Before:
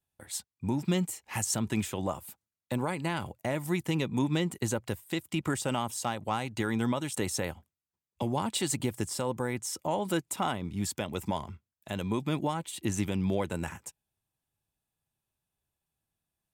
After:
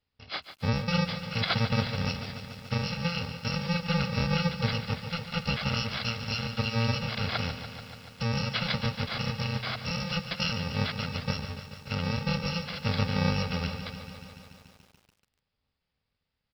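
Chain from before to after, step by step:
samples in bit-reversed order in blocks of 128 samples
downsampling to 11,025 Hz
feedback echo at a low word length 144 ms, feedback 80%, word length 10 bits, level −11 dB
level +7.5 dB

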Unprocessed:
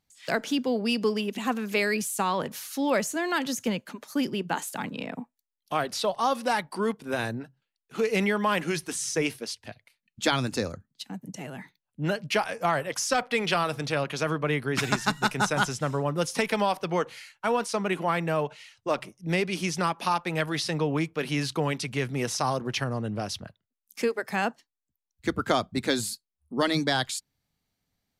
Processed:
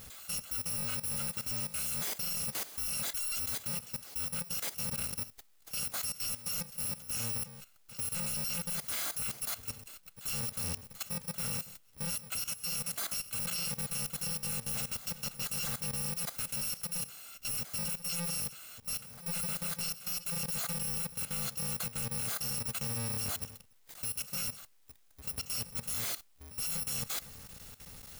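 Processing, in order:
samples in bit-reversed order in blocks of 128 samples
reversed playback
downward compressor 8 to 1, threshold −33 dBFS, peak gain reduction 15 dB
reversed playback
power curve on the samples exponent 0.35
output level in coarse steps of 14 dB
level −7 dB

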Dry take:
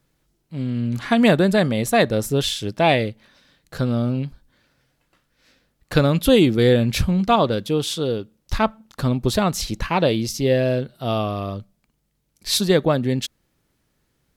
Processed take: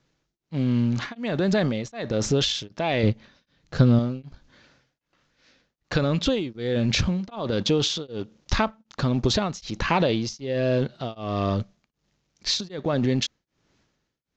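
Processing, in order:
mu-law and A-law mismatch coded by A
low-shelf EQ 77 Hz −7 dB
transient designer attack 0 dB, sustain +8 dB
speech leveller within 3 dB 0.5 s
Butterworth low-pass 6,900 Hz 72 dB per octave
downward compressor 6 to 1, threshold −23 dBFS, peak gain reduction 12 dB
0:03.03–0:03.99: low-shelf EQ 240 Hz +9.5 dB
tremolo along a rectified sine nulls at 1.3 Hz
level +5 dB

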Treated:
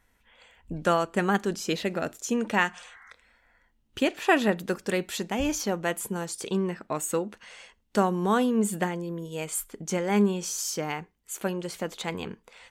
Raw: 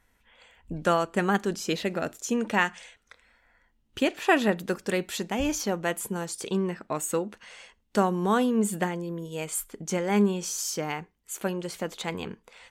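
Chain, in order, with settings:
healed spectral selection 0:02.76–0:03.08, 690–2,200 Hz

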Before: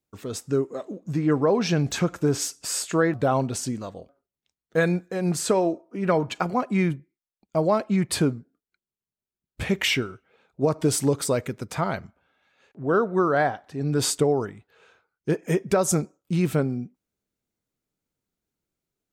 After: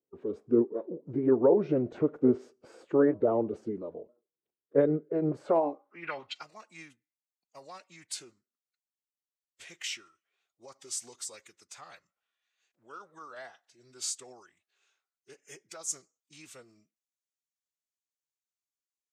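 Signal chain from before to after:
bass and treble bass 0 dB, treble −8 dB
band-pass filter sweep 410 Hz → 6,800 Hz, 0:05.27–0:06.54
phase-vocoder pitch shift with formants kept −2.5 semitones
level +3 dB

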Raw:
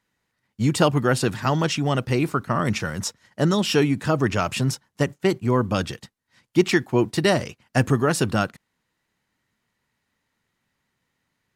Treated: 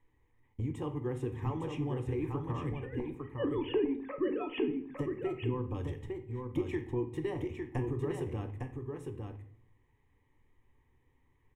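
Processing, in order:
0:02.72–0:04.88: three sine waves on the formant tracks
spectral tilt −3.5 dB per octave
notch filter 2,700 Hz, Q 16
downward compressor 8 to 1, threshold −29 dBFS, peak gain reduction 22.5 dB
phaser with its sweep stopped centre 950 Hz, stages 8
single-tap delay 856 ms −5 dB
rectangular room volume 100 cubic metres, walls mixed, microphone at 0.37 metres

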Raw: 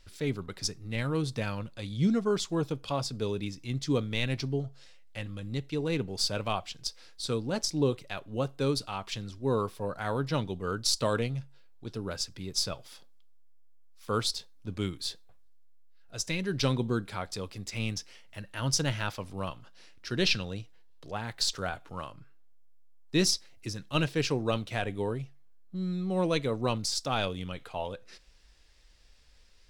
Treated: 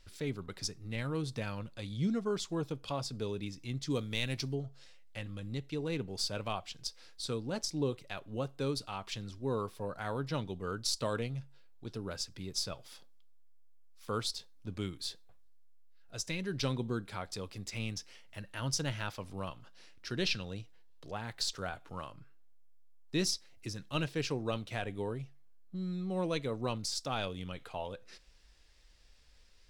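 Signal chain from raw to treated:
in parallel at −1 dB: downward compressor, threshold −36 dBFS, peak gain reduction 14.5 dB
0:03.90–0:04.55: on the sum: high-shelf EQ 4,700 Hz +10 dB
level −8 dB

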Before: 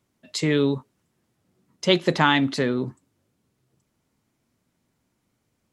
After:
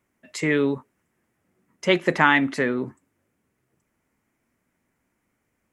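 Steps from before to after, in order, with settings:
graphic EQ with 10 bands 125 Hz −6 dB, 2,000 Hz +8 dB, 4,000 Hz −11 dB

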